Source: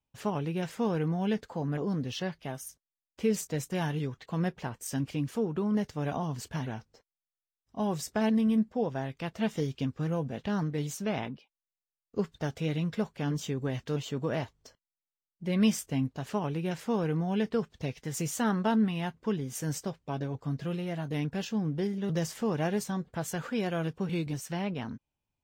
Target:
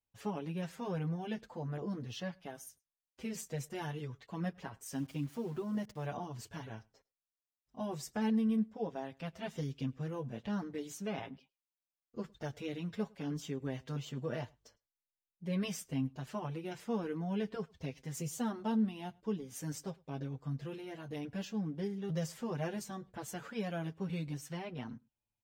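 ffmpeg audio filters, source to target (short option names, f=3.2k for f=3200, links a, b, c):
-filter_complex "[0:a]asettb=1/sr,asplit=3[a][b][c];[a]atrim=end=4.944[d];[b]atrim=start=4.94:end=6.06,asetpts=PTS-STARTPTS,afade=t=in:d=0.004:c=qsin,afade=t=out:st=1.116:d=0.004:c=qsin,aeval=exprs='val(0)*gte(abs(val(0)),0.00501)':c=same[e];[c]atrim=start=6.056[f];[d][e]acrossfade=d=0.004:c1=hsin:c2=qsin[g];[g][f]acrossfade=d=0.004:c1=qsin:c2=hsin,asettb=1/sr,asplit=3[h][i][j];[h]atrim=end=18.204[k];[i]atrim=start=18.2:end=19.44,asetpts=PTS-STARTPTS,afade=t=in:d=0.004:c=qsin,afade=t=out:st=1.236:d=0.004:c=qsin,equalizer=f=1.7k:w=1.3:g=-7[l];[j]atrim=start=19.436[m];[k][l]acrossfade=d=0.004:c1=hsin:c2=qsin[n];[n][m]acrossfade=d=0.004:c1=qsin:c2=hsin,asplit=2[o][p];[p]adelay=105,volume=-27dB,highshelf=f=4k:g=-2.36[q];[o][q]amix=inputs=2:normalize=0,asplit=2[r][s];[s]adelay=6.6,afreqshift=-0.47[t];[r][t]amix=inputs=2:normalize=1,volume=-4.5dB"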